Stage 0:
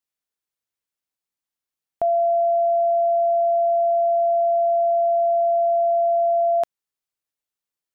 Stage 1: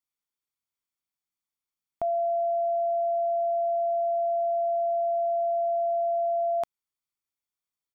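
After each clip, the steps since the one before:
comb filter 0.9 ms, depth 38%
level −4.5 dB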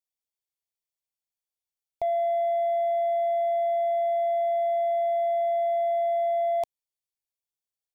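leveller curve on the samples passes 1
phaser with its sweep stopped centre 580 Hz, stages 4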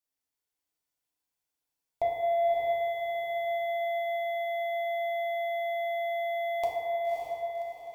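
feedback delay with all-pass diffusion 565 ms, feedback 49%, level −3.5 dB
feedback delay network reverb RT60 2.1 s, low-frequency decay 0.7×, high-frequency decay 0.35×, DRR −3 dB

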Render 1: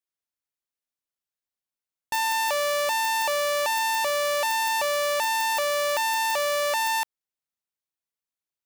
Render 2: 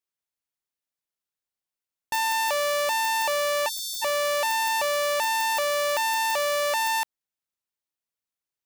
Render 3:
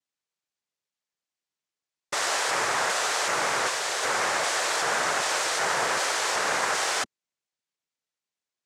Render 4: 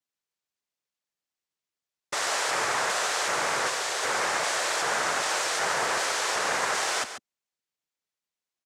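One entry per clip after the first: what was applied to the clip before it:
time-frequency box erased 0:03.69–0:04.02, 230–3,100 Hz
flat-topped bell 1,300 Hz −9 dB; full-wave rectification; cochlear-implant simulation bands 3; level +6.5 dB
single-tap delay 140 ms −10.5 dB; level −1.5 dB

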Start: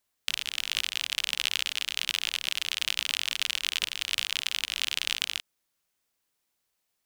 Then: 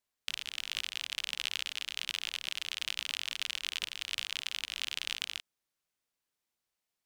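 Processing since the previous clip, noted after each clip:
high-shelf EQ 10,000 Hz −5.5 dB
level −6.5 dB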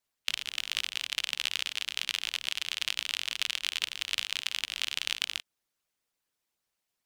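harmonic and percussive parts rebalanced harmonic −13 dB
level +7 dB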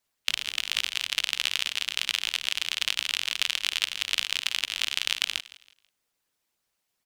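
repeating echo 163 ms, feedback 32%, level −18 dB
level +4.5 dB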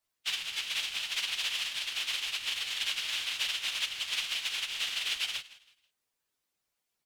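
random phases in long frames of 50 ms
level −4.5 dB

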